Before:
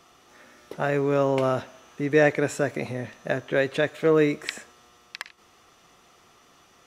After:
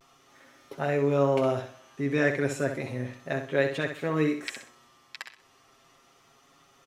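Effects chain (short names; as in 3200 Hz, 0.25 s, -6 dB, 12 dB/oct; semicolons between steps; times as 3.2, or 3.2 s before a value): comb 7.4 ms, depth 71%; vibrato 0.33 Hz 27 cents; on a send: feedback echo 64 ms, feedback 30%, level -8 dB; on the sum: gain -6 dB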